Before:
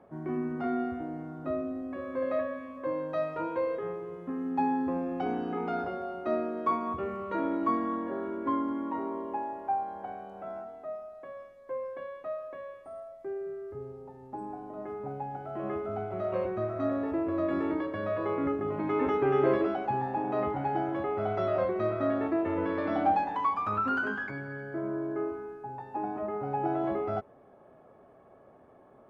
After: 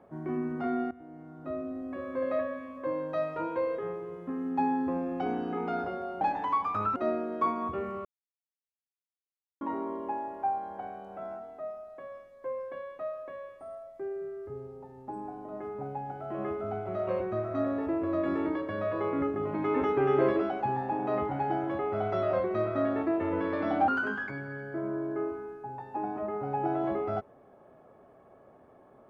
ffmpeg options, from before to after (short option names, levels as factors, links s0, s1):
-filter_complex "[0:a]asplit=7[s0][s1][s2][s3][s4][s5][s6];[s0]atrim=end=0.91,asetpts=PTS-STARTPTS,afade=t=out:st=0.906:d=0.004:c=hsin:silence=0.149624[s7];[s1]atrim=start=0.91:end=6.212,asetpts=PTS-STARTPTS,afade=t=in:d=1.03:silence=0.149624[s8];[s2]atrim=start=23.128:end=23.882[s9];[s3]atrim=start=6.208:end=7.3,asetpts=PTS-STARTPTS,afade=t=out:st=1.088:d=0.004:c=hsin[s10];[s4]atrim=start=7.3:end=8.86,asetpts=PTS-STARTPTS,volume=0[s11];[s5]atrim=start=8.86:end=23.132,asetpts=PTS-STARTPTS,afade=t=in:d=0.004:c=hsin[s12];[s6]atrim=start=23.878[s13];[s7][s8]concat=n=2:v=0:a=1[s14];[s14][s9]acrossfade=d=0.004:c1=hsin:c2=hsin[s15];[s10][s11][s12]concat=n=3:v=0:a=1[s16];[s15][s16]acrossfade=d=0.004:c1=hsin:c2=hsin[s17];[s17][s13]acrossfade=d=0.004:c1=hsin:c2=hsin"